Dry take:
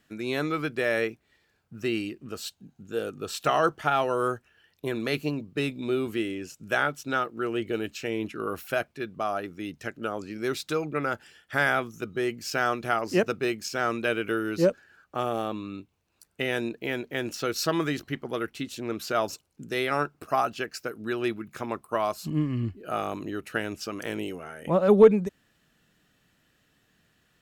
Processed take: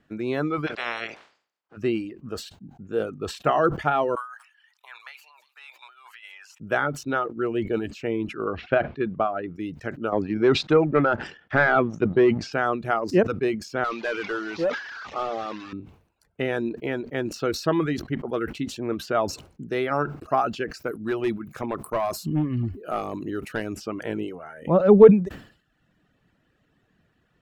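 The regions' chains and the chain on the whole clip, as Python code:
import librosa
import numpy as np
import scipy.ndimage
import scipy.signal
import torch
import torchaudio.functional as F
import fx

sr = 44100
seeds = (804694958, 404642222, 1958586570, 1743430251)

y = fx.spec_clip(x, sr, under_db=27, at=(0.66, 1.76), fade=0.02)
y = fx.highpass(y, sr, hz=890.0, slope=6, at=(0.66, 1.76), fade=0.02)
y = fx.air_absorb(y, sr, metres=100.0, at=(0.66, 1.76), fade=0.02)
y = fx.chain(y, sr, fx.over_compress(threshold_db=-33.0, ratio=-1.0),
    fx.ellip_highpass(hz=880.0, order=4, stop_db=70),
    fx.echo_wet_highpass(ms=176, feedback_pct=51, hz=5300.0, wet_db=-8.0), at=(4.15, 6.6))
y = fx.chain(y, sr, fx.lowpass(hz=3700.0, slope=24),
    fx.transient(attack_db=5, sustain_db=-1), at=(8.44, 9.56))
y = fx.chain(y, sr, fx.highpass(hz=86.0, slope=12),
    fx.leveller(passes=2),
    fx.air_absorb(metres=150.0), at=(10.12, 12.53))
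y = fx.chain(y, sr, fx.delta_mod(bps=32000, step_db=-35.0),
    fx.highpass(hz=1200.0, slope=6),
    fx.leveller(passes=2), at=(13.84, 15.73))
y = fx.chain(y, sr, fx.high_shelf(hz=6000.0, db=12.0),
    fx.clip_hard(threshold_db=-22.0), at=(20.82, 23.77))
y = fx.dereverb_blind(y, sr, rt60_s=0.74)
y = fx.lowpass(y, sr, hz=1100.0, slope=6)
y = fx.sustainer(y, sr, db_per_s=120.0)
y = y * 10.0 ** (5.0 / 20.0)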